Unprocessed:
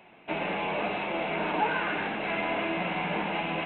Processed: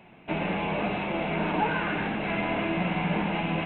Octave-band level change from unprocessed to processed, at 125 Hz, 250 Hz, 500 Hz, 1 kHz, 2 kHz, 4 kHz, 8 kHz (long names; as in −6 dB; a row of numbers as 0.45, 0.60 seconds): +9.0 dB, +5.5 dB, +1.0 dB, 0.0 dB, 0.0 dB, −0.5 dB, can't be measured